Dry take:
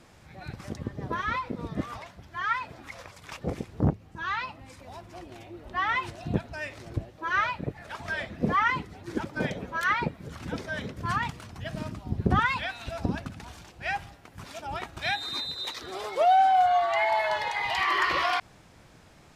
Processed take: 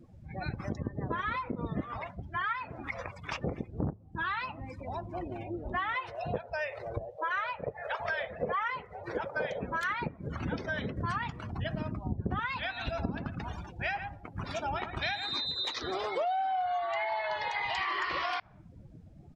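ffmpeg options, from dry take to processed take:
ffmpeg -i in.wav -filter_complex "[0:a]asettb=1/sr,asplit=3[link_01][link_02][link_03];[link_01]atrim=end=5.944[link_04];[link_02]atrim=start=5.94:end=9.61,asetpts=PTS-STARTPTS,afade=type=in:duration=0.004:curve=qsin,afade=type=out:start_time=3.666:duration=0.004:curve=qsin,lowshelf=frequency=390:width_type=q:width=3:gain=-8.5[link_05];[link_03]atrim=start=9.606[link_06];[link_04][link_05]acrossfade=duration=0.004:curve1=hsin:curve2=qsin[link_07];[link_07][link_06]acrossfade=duration=0.004:curve1=qsin:curve2=hsin,asplit=3[link_08][link_09][link_10];[link_08]afade=type=out:start_time=12.76:duration=0.02[link_11];[link_09]aecho=1:1:113:0.316,afade=type=in:start_time=12.76:duration=0.02,afade=type=out:start_time=15.36:duration=0.02[link_12];[link_10]afade=type=in:start_time=15.36:duration=0.02[link_13];[link_11][link_12][link_13]amix=inputs=3:normalize=0,afftdn=noise_reduction=28:noise_floor=-47,acompressor=threshold=-38dB:ratio=6,volume=7dB" out.wav

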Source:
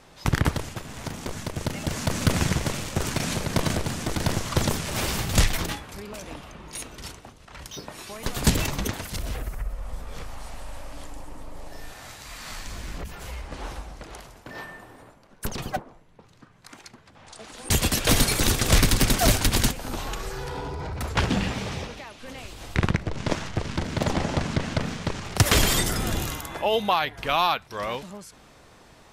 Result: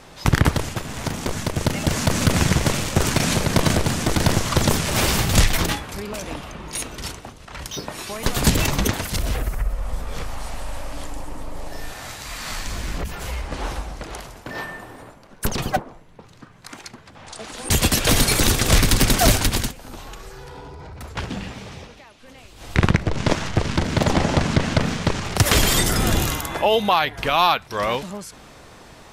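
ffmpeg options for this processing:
ffmpeg -i in.wav -filter_complex "[0:a]asplit=3[link_01][link_02][link_03];[link_01]atrim=end=19.68,asetpts=PTS-STARTPTS,afade=type=out:start_time=19.34:duration=0.34:silence=0.223872[link_04];[link_02]atrim=start=19.68:end=22.53,asetpts=PTS-STARTPTS,volume=-13dB[link_05];[link_03]atrim=start=22.53,asetpts=PTS-STARTPTS,afade=type=in:duration=0.34:silence=0.223872[link_06];[link_04][link_05][link_06]concat=n=3:v=0:a=1,alimiter=limit=-14.5dB:level=0:latency=1:release=172,volume=7.5dB" out.wav

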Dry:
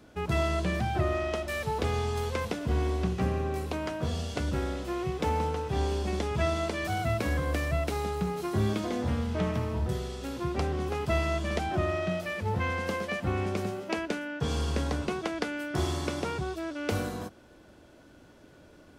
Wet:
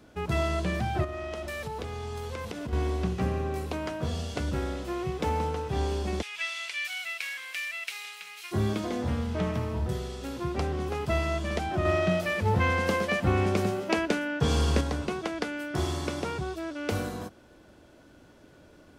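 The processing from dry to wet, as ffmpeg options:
ffmpeg -i in.wav -filter_complex "[0:a]asettb=1/sr,asplit=3[link_01][link_02][link_03];[link_01]atrim=end=1.044[link_04];[link_02]atrim=start=1.04:end=2.73,asetpts=PTS-STARTPTS,afade=type=in:duration=0.004:curve=qsin,afade=type=out:start_time=1.686:duration=0.004:curve=qsin,acompressor=threshold=-31dB:ratio=10:attack=3.2:release=140:knee=1:detection=peak[link_05];[link_03]atrim=start=2.726[link_06];[link_04][link_05]acrossfade=duration=0.004:curve1=hsin:curve2=qsin[link_07];[link_07][link_06]acrossfade=duration=0.004:curve1=qsin:curve2=hsin,asplit=3[link_08][link_09][link_10];[link_08]afade=type=out:start_time=6.21:duration=0.02[link_11];[link_09]highpass=frequency=2400:width_type=q:width=2.6,afade=type=in:start_time=6.21:duration=0.02,afade=type=out:start_time=8.51:duration=0.02[link_12];[link_10]afade=type=in:start_time=8.51:duration=0.02[link_13];[link_11][link_12][link_13]amix=inputs=3:normalize=0,asettb=1/sr,asplit=3[link_14][link_15][link_16];[link_14]atrim=end=11.854[link_17];[link_15]atrim=start=11.85:end=14.81,asetpts=PTS-STARTPTS,afade=type=in:duration=0.004:curve=qsin,afade=type=out:start_time=2.956:duration=0.004:curve=qsin,acontrast=27[link_18];[link_16]atrim=start=14.806[link_19];[link_17][link_18]acrossfade=duration=0.004:curve1=hsin:curve2=qsin[link_20];[link_20][link_19]acrossfade=duration=0.004:curve1=qsin:curve2=hsin" out.wav

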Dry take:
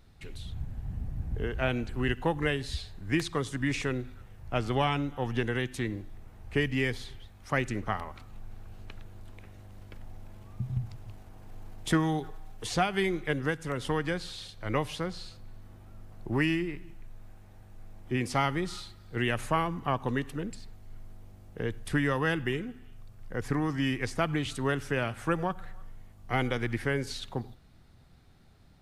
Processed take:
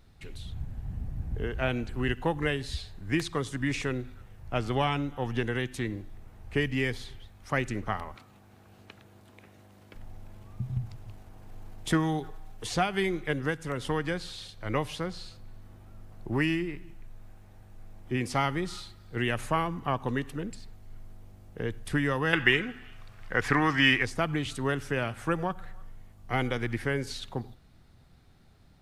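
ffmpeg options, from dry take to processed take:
ffmpeg -i in.wav -filter_complex "[0:a]asettb=1/sr,asplit=3[link_01][link_02][link_03];[link_01]atrim=end=8.154[link_04];[link_02]atrim=start=8.15:end=9.95,asetpts=PTS-STARTPTS,afade=type=in:duration=0.004:curve=qsin,afade=type=out:start_time=1.796:duration=0.004:curve=qsin,highpass=150[link_05];[link_03]atrim=start=9.946[link_06];[link_04][link_05]acrossfade=duration=0.004:curve1=hsin:curve2=qsin[link_07];[link_07][link_06]acrossfade=duration=0.004:curve1=qsin:curve2=hsin,asettb=1/sr,asplit=3[link_08][link_09][link_10];[link_08]atrim=end=22.334[link_11];[link_09]atrim=start=22.33:end=24.03,asetpts=PTS-STARTPTS,afade=type=in:duration=0.004:curve=qsin,afade=type=out:start_time=1.696:duration=0.004:curve=qsin,equalizer=frequency=2000:width_type=o:width=2.9:gain=14.5[link_12];[link_10]atrim=start=24.026[link_13];[link_11][link_12]acrossfade=duration=0.004:curve1=hsin:curve2=qsin[link_14];[link_14][link_13]acrossfade=duration=0.004:curve1=qsin:curve2=hsin" out.wav

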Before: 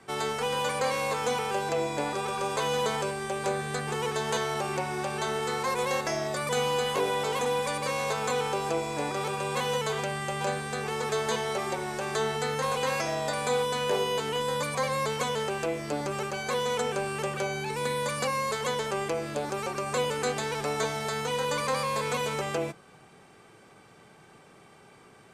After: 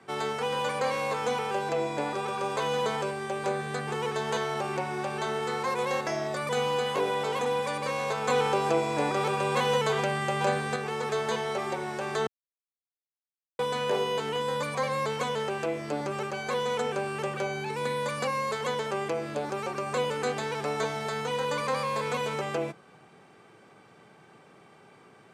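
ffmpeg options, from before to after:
ffmpeg -i in.wav -filter_complex "[0:a]asplit=5[link_01][link_02][link_03][link_04][link_05];[link_01]atrim=end=8.282[link_06];[link_02]atrim=start=8.278:end=10.762,asetpts=PTS-STARTPTS,volume=4dB[link_07];[link_03]atrim=start=10.758:end=12.27,asetpts=PTS-STARTPTS,afade=type=out:start_time=1.508:duration=0.004:curve=hsin[link_08];[link_04]atrim=start=12.27:end=13.59,asetpts=PTS-STARTPTS,volume=0[link_09];[link_05]atrim=start=13.59,asetpts=PTS-STARTPTS,afade=type=in:duration=0.004:curve=hsin[link_10];[link_06][link_07]acrossfade=duration=0.004:curve1=hsin:curve2=hsin[link_11];[link_08][link_09][link_10]concat=n=3:v=0:a=1[link_12];[link_11][link_12]acrossfade=duration=0.004:curve1=hsin:curve2=hsin,highpass=110,highshelf=frequency=5500:gain=-9.5" out.wav

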